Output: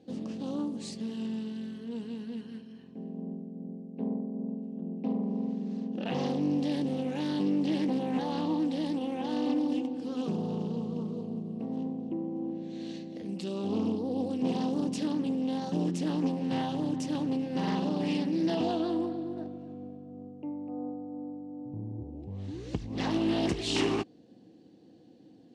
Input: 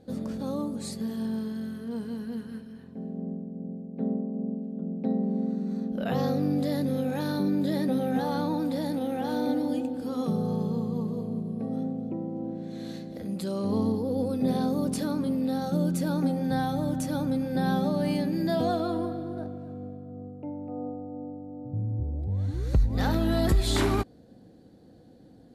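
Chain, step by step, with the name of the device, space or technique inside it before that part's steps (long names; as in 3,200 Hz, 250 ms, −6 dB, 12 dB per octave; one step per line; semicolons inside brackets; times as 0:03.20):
full-range speaker at full volume (highs frequency-modulated by the lows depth 0.7 ms; loudspeaker in its box 150–8,300 Hz, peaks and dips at 320 Hz +6 dB, 590 Hz −4 dB, 1,400 Hz −8 dB, 2,800 Hz +10 dB, 5,700 Hz +4 dB)
level −3.5 dB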